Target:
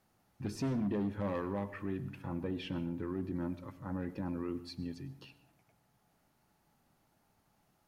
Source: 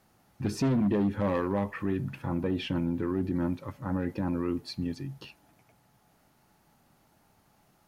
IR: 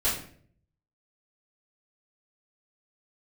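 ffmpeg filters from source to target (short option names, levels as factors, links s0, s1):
-filter_complex "[0:a]asplit=2[s0][s1];[1:a]atrim=start_sample=2205,adelay=92[s2];[s1][s2]afir=irnorm=-1:irlink=0,volume=0.0531[s3];[s0][s3]amix=inputs=2:normalize=0,volume=0.398"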